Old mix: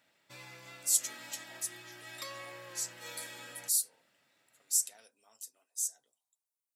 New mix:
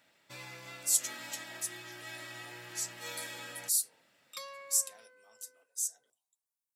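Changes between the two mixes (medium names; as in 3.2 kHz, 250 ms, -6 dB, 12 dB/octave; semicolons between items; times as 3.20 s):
first sound +3.5 dB; second sound: entry +2.15 s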